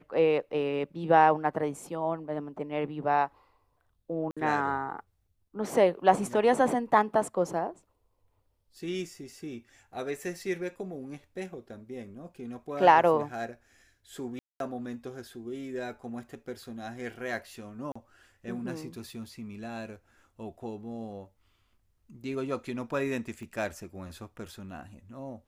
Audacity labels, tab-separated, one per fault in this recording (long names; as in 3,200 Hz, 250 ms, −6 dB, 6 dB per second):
4.310000	4.370000	drop-out 56 ms
14.390000	14.600000	drop-out 212 ms
17.920000	17.950000	drop-out 35 ms
23.430000	23.430000	click −34 dBFS